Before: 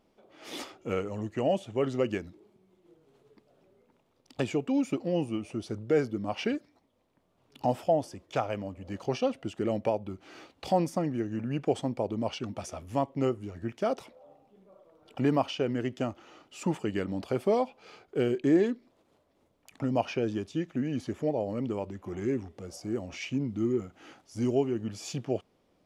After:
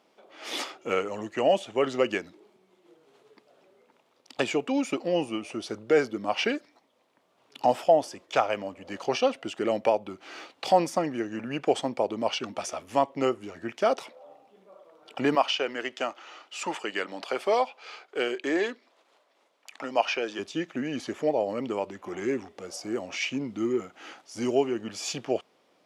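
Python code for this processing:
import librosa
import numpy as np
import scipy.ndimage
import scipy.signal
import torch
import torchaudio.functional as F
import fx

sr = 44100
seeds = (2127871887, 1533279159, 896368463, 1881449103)

y = fx.weighting(x, sr, curve='A', at=(15.35, 20.39))
y = fx.weighting(y, sr, curve='A')
y = y * 10.0 ** (7.5 / 20.0)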